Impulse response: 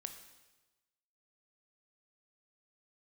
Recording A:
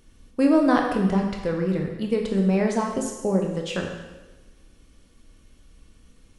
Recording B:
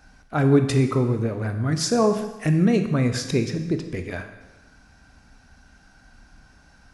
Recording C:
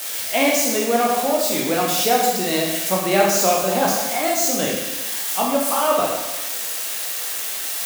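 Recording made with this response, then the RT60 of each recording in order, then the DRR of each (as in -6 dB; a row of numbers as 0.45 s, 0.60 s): B; 1.2 s, 1.2 s, 1.2 s; 1.5 dB, 6.5 dB, -3.0 dB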